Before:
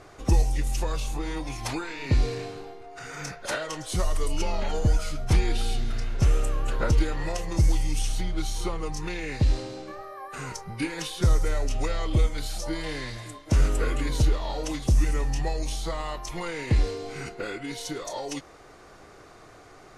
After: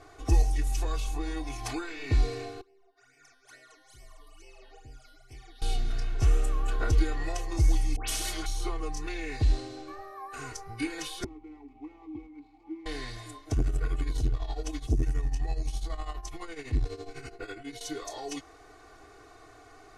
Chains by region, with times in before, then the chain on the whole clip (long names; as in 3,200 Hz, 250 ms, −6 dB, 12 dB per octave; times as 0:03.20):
0:02.61–0:05.62: low-shelf EQ 320 Hz −9 dB + tuned comb filter 130 Hz, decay 1.4 s, mix 90% + all-pass phaser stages 12, 2.3 Hz, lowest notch 120–1,300 Hz
0:07.96–0:08.46: all-pass dispersion highs, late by 119 ms, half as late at 1,800 Hz + every bin compressed towards the loudest bin 2 to 1
0:11.24–0:12.86: running median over 15 samples + formant filter u
0:13.49–0:17.81: low-shelf EQ 170 Hz +6 dB + shaped tremolo triangle 12 Hz, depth 85% + saturating transformer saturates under 210 Hz
whole clip: notch filter 370 Hz, Q 12; comb filter 2.7 ms, depth 96%; level −6.5 dB